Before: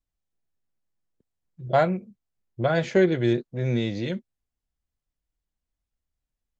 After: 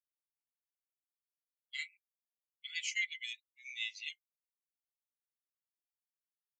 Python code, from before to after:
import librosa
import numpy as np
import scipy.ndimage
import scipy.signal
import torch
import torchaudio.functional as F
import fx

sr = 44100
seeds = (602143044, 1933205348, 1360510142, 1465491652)

y = fx.bin_expand(x, sr, power=2.0)
y = scipy.signal.sosfilt(scipy.signal.cheby1(6, 9, 2000.0, 'highpass', fs=sr, output='sos'), y)
y = y * librosa.db_to_amplitude(9.0)